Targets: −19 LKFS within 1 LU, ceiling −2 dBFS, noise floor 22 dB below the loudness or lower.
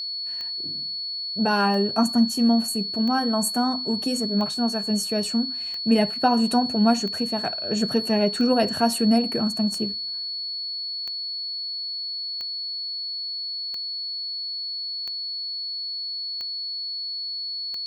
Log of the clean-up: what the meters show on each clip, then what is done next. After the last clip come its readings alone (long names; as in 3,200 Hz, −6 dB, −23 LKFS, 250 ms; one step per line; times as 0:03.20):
number of clicks 14; interfering tone 4,400 Hz; level of the tone −28 dBFS; integrated loudness −24.0 LKFS; sample peak −7.0 dBFS; target loudness −19.0 LKFS
→ click removal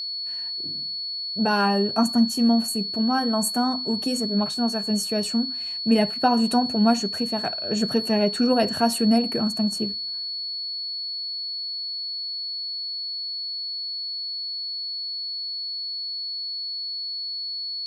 number of clicks 0; interfering tone 4,400 Hz; level of the tone −28 dBFS
→ notch filter 4,400 Hz, Q 30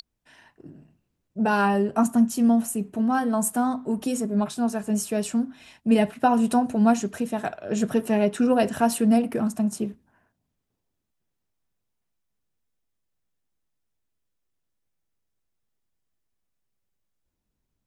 interfering tone none found; integrated loudness −23.5 LKFS; sample peak −7.5 dBFS; target loudness −19.0 LKFS
→ level +4.5 dB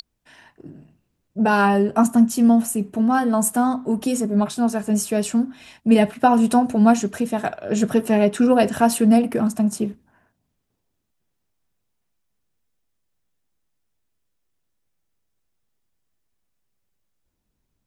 integrated loudness −19.0 LKFS; sample peak −3.0 dBFS; background noise floor −75 dBFS